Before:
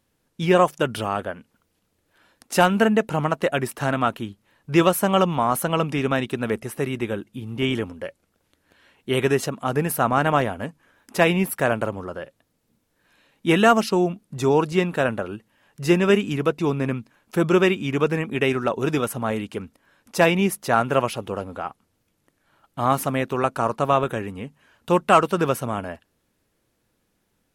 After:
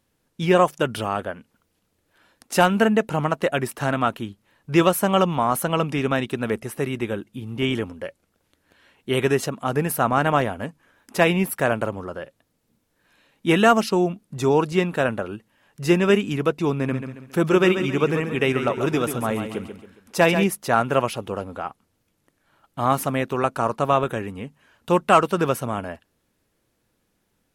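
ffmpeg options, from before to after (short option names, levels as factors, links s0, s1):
-filter_complex "[0:a]asettb=1/sr,asplit=3[s0][s1][s2];[s0]atrim=end=16.754[s3];[s1]atrim=start=16.75:end=20.44,asetpts=PTS-STARTPTS,afade=t=in:d=0.004:c=qsin,afade=t=out:st=3.686:d=0.004:c=qsin,aecho=1:1:137|274|411|548:0.376|0.147|0.0572|0.0223,atrim=end_sample=162729[s4];[s2]atrim=start=20.436[s5];[s3][s4]acrossfade=d=0.004:c1=hsin:c2=qsin[s6];[s6][s5]acrossfade=d=0.004:c1=qsin:c2=hsin"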